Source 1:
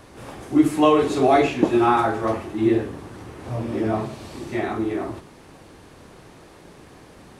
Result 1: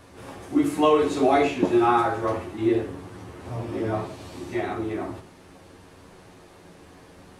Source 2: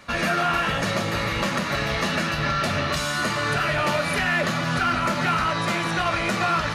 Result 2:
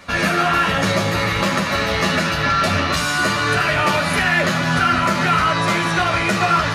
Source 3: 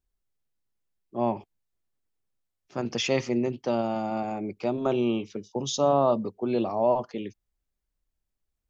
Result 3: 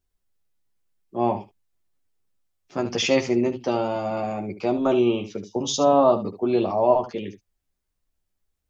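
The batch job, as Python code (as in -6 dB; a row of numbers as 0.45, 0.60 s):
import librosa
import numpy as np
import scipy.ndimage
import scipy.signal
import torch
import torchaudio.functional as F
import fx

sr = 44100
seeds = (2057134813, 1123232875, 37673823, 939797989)

y = fx.room_early_taps(x, sr, ms=(11, 75), db=(-4.0, -12.0))
y = librosa.util.normalize(y) * 10.0 ** (-6 / 20.0)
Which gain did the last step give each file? -4.5, +4.0, +3.0 dB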